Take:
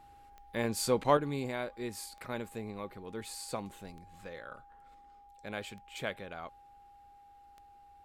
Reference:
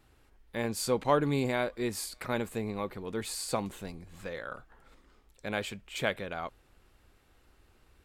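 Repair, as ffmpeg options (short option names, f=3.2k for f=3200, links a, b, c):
-af "adeclick=t=4,bandreject=f=810:w=30,asetnsamples=n=441:p=0,asendcmd='1.17 volume volume 6.5dB',volume=0dB"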